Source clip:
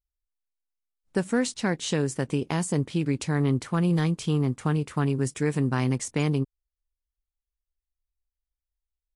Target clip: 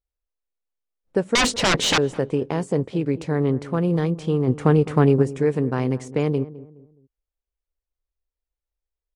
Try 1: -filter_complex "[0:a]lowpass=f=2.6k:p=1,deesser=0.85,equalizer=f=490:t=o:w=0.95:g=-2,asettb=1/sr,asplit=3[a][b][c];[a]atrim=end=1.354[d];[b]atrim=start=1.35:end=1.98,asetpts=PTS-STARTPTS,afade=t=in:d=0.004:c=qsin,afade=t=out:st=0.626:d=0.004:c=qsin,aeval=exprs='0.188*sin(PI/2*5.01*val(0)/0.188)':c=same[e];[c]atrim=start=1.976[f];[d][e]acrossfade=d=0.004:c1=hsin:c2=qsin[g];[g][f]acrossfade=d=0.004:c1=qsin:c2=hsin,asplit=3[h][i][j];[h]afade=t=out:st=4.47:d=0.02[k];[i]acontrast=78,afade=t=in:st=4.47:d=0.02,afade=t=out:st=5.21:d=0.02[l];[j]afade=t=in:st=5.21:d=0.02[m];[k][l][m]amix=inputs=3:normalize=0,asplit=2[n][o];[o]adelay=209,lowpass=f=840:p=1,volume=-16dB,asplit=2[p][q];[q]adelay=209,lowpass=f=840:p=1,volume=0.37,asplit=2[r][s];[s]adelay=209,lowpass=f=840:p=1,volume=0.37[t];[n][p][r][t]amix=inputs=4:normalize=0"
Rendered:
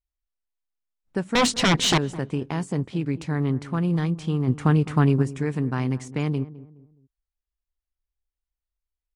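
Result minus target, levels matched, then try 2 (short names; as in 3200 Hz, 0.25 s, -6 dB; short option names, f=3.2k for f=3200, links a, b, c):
500 Hz band -5.5 dB
-filter_complex "[0:a]lowpass=f=2.6k:p=1,deesser=0.85,equalizer=f=490:t=o:w=0.95:g=9.5,asettb=1/sr,asplit=3[a][b][c];[a]atrim=end=1.354[d];[b]atrim=start=1.35:end=1.98,asetpts=PTS-STARTPTS,afade=t=in:d=0.004:c=qsin,afade=t=out:st=0.626:d=0.004:c=qsin,aeval=exprs='0.188*sin(PI/2*5.01*val(0)/0.188)':c=same[e];[c]atrim=start=1.976[f];[d][e]acrossfade=d=0.004:c1=hsin:c2=qsin[g];[g][f]acrossfade=d=0.004:c1=qsin:c2=hsin,asplit=3[h][i][j];[h]afade=t=out:st=4.47:d=0.02[k];[i]acontrast=78,afade=t=in:st=4.47:d=0.02,afade=t=out:st=5.21:d=0.02[l];[j]afade=t=in:st=5.21:d=0.02[m];[k][l][m]amix=inputs=3:normalize=0,asplit=2[n][o];[o]adelay=209,lowpass=f=840:p=1,volume=-16dB,asplit=2[p][q];[q]adelay=209,lowpass=f=840:p=1,volume=0.37,asplit=2[r][s];[s]adelay=209,lowpass=f=840:p=1,volume=0.37[t];[n][p][r][t]amix=inputs=4:normalize=0"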